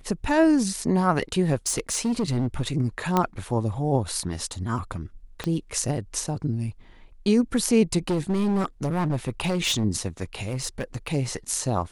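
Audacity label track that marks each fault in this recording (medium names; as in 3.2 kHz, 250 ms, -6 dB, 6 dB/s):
1.660000	2.620000	clipped -20 dBFS
3.170000	3.170000	pop -8 dBFS
5.440000	5.440000	pop -15 dBFS
8.070000	9.850000	clipped -20 dBFS
10.410000	11.140000	clipped -22.5 dBFS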